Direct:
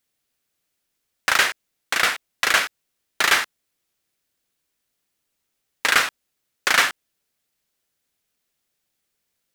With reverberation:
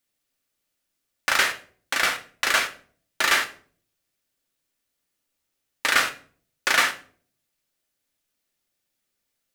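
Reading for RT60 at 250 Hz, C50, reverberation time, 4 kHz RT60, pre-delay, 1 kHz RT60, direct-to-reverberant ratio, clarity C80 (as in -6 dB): 0.65 s, 14.0 dB, 0.45 s, 0.35 s, 3 ms, 0.40 s, 4.5 dB, 18.5 dB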